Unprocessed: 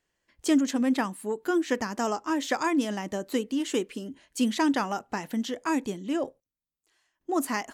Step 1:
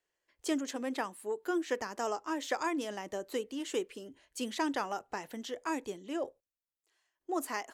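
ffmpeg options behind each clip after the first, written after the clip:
-filter_complex "[0:a]lowshelf=f=300:t=q:w=1.5:g=-8,acrossover=split=130|6200[a][b][c];[a]dynaudnorm=f=330:g=11:m=9dB[d];[d][b][c]amix=inputs=3:normalize=0,volume=-6.5dB"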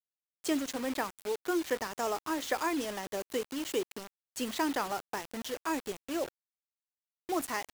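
-af "acrusher=bits=6:mix=0:aa=0.000001,volume=1.5dB"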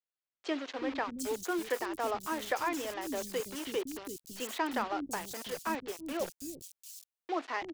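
-filter_complex "[0:a]acrossover=split=290|4600[a][b][c];[a]adelay=330[d];[c]adelay=750[e];[d][b][e]amix=inputs=3:normalize=0"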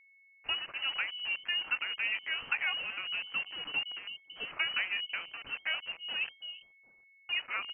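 -af "lowpass=f=2.7k:t=q:w=0.5098,lowpass=f=2.7k:t=q:w=0.6013,lowpass=f=2.7k:t=q:w=0.9,lowpass=f=2.7k:t=q:w=2.563,afreqshift=-3200,aeval=exprs='val(0)+0.001*sin(2*PI*2200*n/s)':c=same"

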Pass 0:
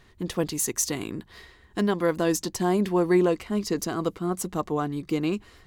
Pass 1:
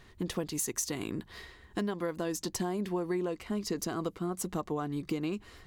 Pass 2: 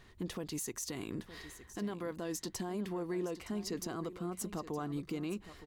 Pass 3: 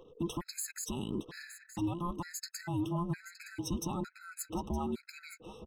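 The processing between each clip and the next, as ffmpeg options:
-af "acompressor=threshold=-30dB:ratio=6"
-af "alimiter=level_in=2.5dB:limit=-24dB:level=0:latency=1:release=33,volume=-2.5dB,aecho=1:1:916:0.2,volume=-3dB"
-af "afftfilt=real='real(if(between(b,1,1008),(2*floor((b-1)/24)+1)*24-b,b),0)':imag='imag(if(between(b,1,1008),(2*floor((b-1)/24)+1)*24-b,b),0)*if(between(b,1,1008),-1,1)':win_size=2048:overlap=0.75,anlmdn=0.0001,afftfilt=real='re*gt(sin(2*PI*1.1*pts/sr)*(1-2*mod(floor(b*sr/1024/1300),2)),0)':imag='im*gt(sin(2*PI*1.1*pts/sr)*(1-2*mod(floor(b*sr/1024/1300),2)),0)':win_size=1024:overlap=0.75,volume=4.5dB"

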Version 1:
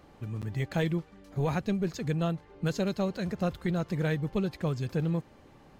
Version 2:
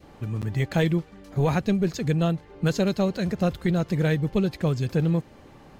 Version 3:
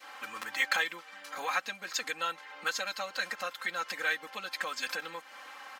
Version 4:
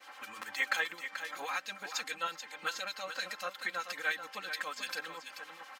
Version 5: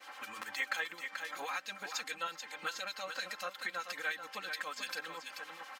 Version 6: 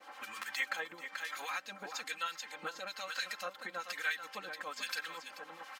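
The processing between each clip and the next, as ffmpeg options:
-af "adynamicequalizer=threshold=0.00355:dfrequency=1100:dqfactor=1.2:tfrequency=1100:tqfactor=1.2:attack=5:release=100:ratio=0.375:range=2:mode=cutabove:tftype=bell,volume=6.5dB"
-af "aecho=1:1:3.8:0.99,acompressor=threshold=-27dB:ratio=6,highpass=f=1.3k:t=q:w=1.7,volume=5dB"
-filter_complex "[0:a]acrossover=split=2400[a][b];[a]aeval=exprs='val(0)*(1-0.7/2+0.7/2*cos(2*PI*9.8*n/s))':c=same[c];[b]aeval=exprs='val(0)*(1-0.7/2-0.7/2*cos(2*PI*9.8*n/s))':c=same[d];[c][d]amix=inputs=2:normalize=0,aecho=1:1:435:0.355"
-af "acompressor=threshold=-43dB:ratio=1.5,volume=1.5dB"
-filter_complex "[0:a]acrossover=split=1100[a][b];[a]aeval=exprs='val(0)*(1-0.7/2+0.7/2*cos(2*PI*1.1*n/s))':c=same[c];[b]aeval=exprs='val(0)*(1-0.7/2-0.7/2*cos(2*PI*1.1*n/s))':c=same[d];[c][d]amix=inputs=2:normalize=0,volume=3dB"

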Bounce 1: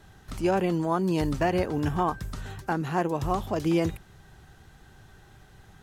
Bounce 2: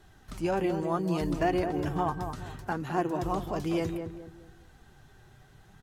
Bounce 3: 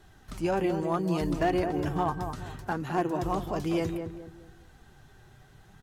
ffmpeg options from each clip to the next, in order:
-filter_complex "[0:a]flanger=delay=2.7:depth=5.6:regen=54:speed=0.66:shape=sinusoidal,asplit=2[a][b];[b]adelay=209,lowpass=f=1.1k:p=1,volume=-6dB,asplit=2[c][d];[d]adelay=209,lowpass=f=1.1k:p=1,volume=0.37,asplit=2[e][f];[f]adelay=209,lowpass=f=1.1k:p=1,volume=0.37,asplit=2[g][h];[h]adelay=209,lowpass=f=1.1k:p=1,volume=0.37[i];[a][c][e][g][i]amix=inputs=5:normalize=0"
-af "asoftclip=type=hard:threshold=-19.5dB,volume=1dB"

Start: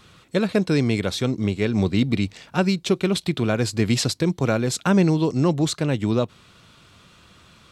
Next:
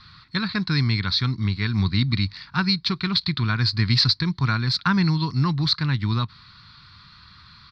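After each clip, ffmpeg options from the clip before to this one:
-af "firequalizer=gain_entry='entry(130,0);entry(200,-7);entry(540,-28);entry(1000,0);entry(1900,1);entry(2900,-9);entry(4400,10);entry(6900,-28)':delay=0.05:min_phase=1,volume=3.5dB"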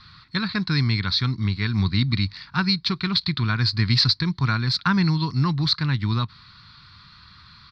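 -af anull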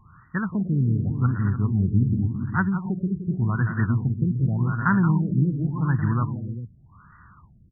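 -af "aecho=1:1:176|237|300|404:0.355|0.119|0.316|0.335,afftfilt=real='re*lt(b*sr/1024,520*pow(2000/520,0.5+0.5*sin(2*PI*0.87*pts/sr)))':imag='im*lt(b*sr/1024,520*pow(2000/520,0.5+0.5*sin(2*PI*0.87*pts/sr)))':win_size=1024:overlap=0.75"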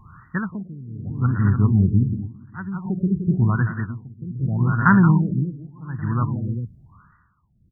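-af "tremolo=f=0.61:d=0.92,volume=6dB"

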